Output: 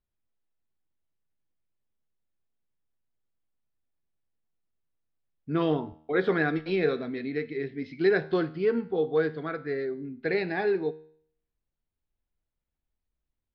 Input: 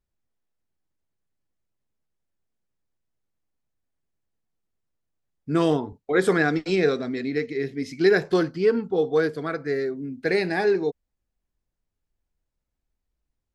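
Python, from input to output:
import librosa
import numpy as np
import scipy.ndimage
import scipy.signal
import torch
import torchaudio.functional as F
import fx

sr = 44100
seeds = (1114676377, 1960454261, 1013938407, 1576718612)

y = scipy.signal.sosfilt(scipy.signal.butter(6, 4100.0, 'lowpass', fs=sr, output='sos'), x)
y = fx.comb_fb(y, sr, f0_hz=78.0, decay_s=0.59, harmonics='all', damping=0.0, mix_pct=50)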